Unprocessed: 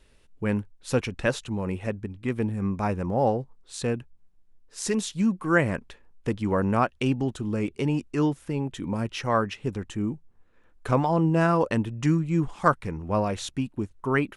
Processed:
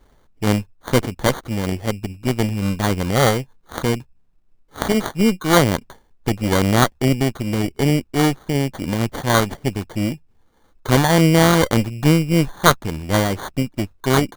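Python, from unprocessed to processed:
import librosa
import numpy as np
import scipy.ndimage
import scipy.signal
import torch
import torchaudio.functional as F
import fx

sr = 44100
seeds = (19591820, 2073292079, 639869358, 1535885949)

y = fx.cheby_harmonics(x, sr, harmonics=(8,), levels_db=(-16,), full_scale_db=-4.5)
y = fx.sample_hold(y, sr, seeds[0], rate_hz=2600.0, jitter_pct=0)
y = y * librosa.db_to_amplitude(5.5)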